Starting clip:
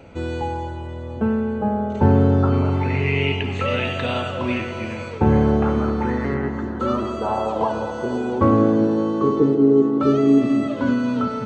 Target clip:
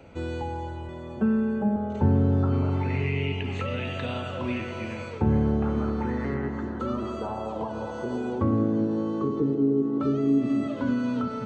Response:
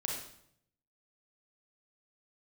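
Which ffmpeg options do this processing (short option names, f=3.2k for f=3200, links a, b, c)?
-filter_complex "[0:a]asettb=1/sr,asplit=3[a][b][c];[a]atrim=end=0.884[d];[b]atrim=start=0.88:end=1.76,asetpts=PTS-STARTPTS,afade=t=in:d=0.004:c=qsin,afade=t=out:st=0.876:d=0.004:c=qsin,aecho=1:1:5.2:0.75,atrim=end_sample=38808[e];[c]atrim=start=1.756[f];[d][e]acrossfade=d=0.004:c1=hsin:c2=qsin[g];[g][f]acrossfade=d=0.004:c1=qsin:c2=hsin,acrossover=split=320[h][i];[i]acompressor=threshold=-26dB:ratio=6[j];[h][j]amix=inputs=2:normalize=0,volume=-5dB"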